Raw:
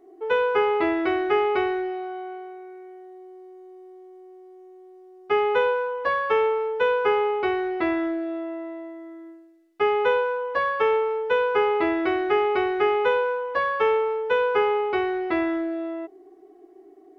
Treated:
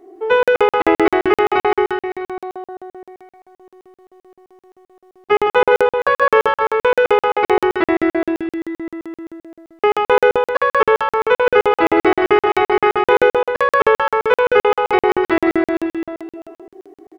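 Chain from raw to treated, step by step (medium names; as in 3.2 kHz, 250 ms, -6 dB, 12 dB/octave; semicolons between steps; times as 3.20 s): bouncing-ball echo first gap 160 ms, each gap 0.9×, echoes 5; crackling interface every 0.13 s, samples 2048, zero, from 0.43 s; trim +8 dB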